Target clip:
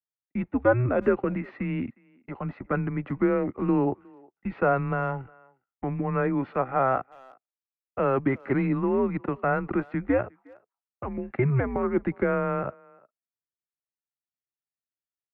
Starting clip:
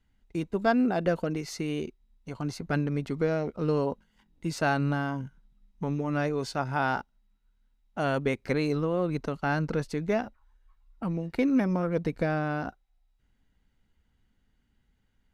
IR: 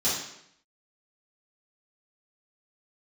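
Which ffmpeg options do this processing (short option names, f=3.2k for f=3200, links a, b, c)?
-filter_complex "[0:a]acrossover=split=220|1100|1400[a][b][c][d];[d]aeval=exprs='0.0178*(abs(mod(val(0)/0.0178+3,4)-2)-1)':c=same[e];[a][b][c][e]amix=inputs=4:normalize=0,highpass=f=290:t=q:w=0.5412,highpass=f=290:t=q:w=1.307,lowpass=f=2.5k:t=q:w=0.5176,lowpass=f=2.5k:t=q:w=0.7071,lowpass=f=2.5k:t=q:w=1.932,afreqshift=-130,agate=range=-33dB:threshold=-52dB:ratio=3:detection=peak,asplit=2[f][g];[g]adelay=360,highpass=300,lowpass=3.4k,asoftclip=type=hard:threshold=-23dB,volume=-25dB[h];[f][h]amix=inputs=2:normalize=0,volume=5dB"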